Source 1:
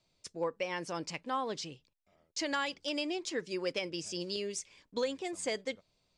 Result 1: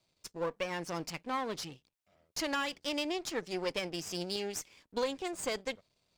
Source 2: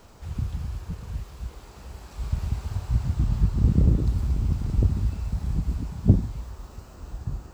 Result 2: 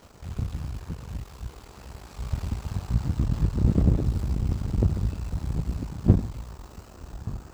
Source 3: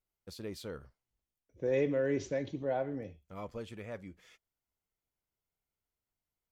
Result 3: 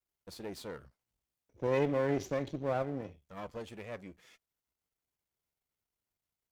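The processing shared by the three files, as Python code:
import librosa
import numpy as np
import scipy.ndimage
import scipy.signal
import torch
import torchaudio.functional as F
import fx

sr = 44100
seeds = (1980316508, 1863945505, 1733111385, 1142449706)

y = np.where(x < 0.0, 10.0 ** (-12.0 / 20.0) * x, x)
y = fx.highpass(y, sr, hz=50.0, slope=6)
y = y * 10.0 ** (3.5 / 20.0)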